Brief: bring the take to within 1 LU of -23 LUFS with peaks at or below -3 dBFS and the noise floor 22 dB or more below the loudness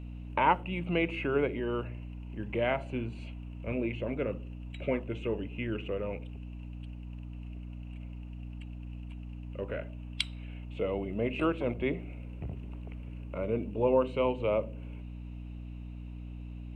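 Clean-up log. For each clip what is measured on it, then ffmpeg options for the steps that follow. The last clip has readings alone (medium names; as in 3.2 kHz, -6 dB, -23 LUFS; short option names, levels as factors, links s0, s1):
hum 60 Hz; highest harmonic 300 Hz; hum level -39 dBFS; loudness -34.5 LUFS; peak level -11.0 dBFS; loudness target -23.0 LUFS
-> -af "bandreject=f=60:t=h:w=4,bandreject=f=120:t=h:w=4,bandreject=f=180:t=h:w=4,bandreject=f=240:t=h:w=4,bandreject=f=300:t=h:w=4"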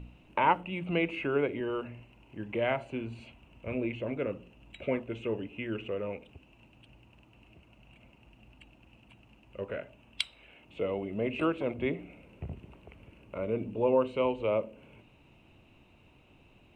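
hum not found; loudness -33.0 LUFS; peak level -11.0 dBFS; loudness target -23.0 LUFS
-> -af "volume=3.16,alimiter=limit=0.708:level=0:latency=1"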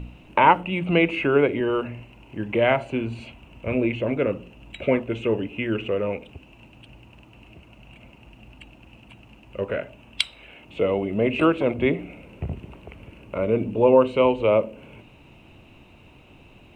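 loudness -23.0 LUFS; peak level -3.0 dBFS; noise floor -51 dBFS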